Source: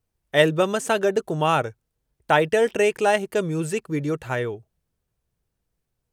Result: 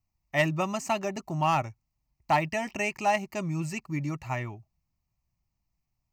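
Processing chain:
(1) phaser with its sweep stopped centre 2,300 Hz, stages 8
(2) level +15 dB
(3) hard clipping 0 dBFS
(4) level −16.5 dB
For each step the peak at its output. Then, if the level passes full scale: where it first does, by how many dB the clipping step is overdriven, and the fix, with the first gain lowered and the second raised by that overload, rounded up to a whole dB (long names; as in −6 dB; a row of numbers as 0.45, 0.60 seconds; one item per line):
−8.0, +7.0, 0.0, −16.5 dBFS
step 2, 7.0 dB
step 2 +8 dB, step 4 −9.5 dB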